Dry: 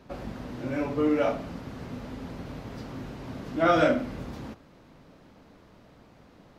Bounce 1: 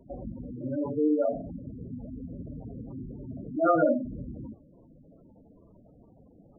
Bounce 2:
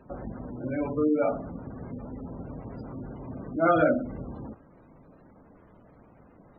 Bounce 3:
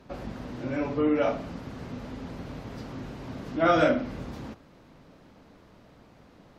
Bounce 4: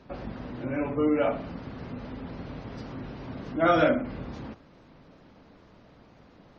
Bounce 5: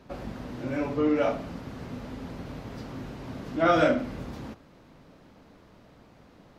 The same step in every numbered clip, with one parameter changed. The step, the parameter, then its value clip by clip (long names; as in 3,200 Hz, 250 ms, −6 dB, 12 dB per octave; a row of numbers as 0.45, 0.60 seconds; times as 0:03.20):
gate on every frequency bin, under each frame's peak: −10, −20, −50, −35, −60 decibels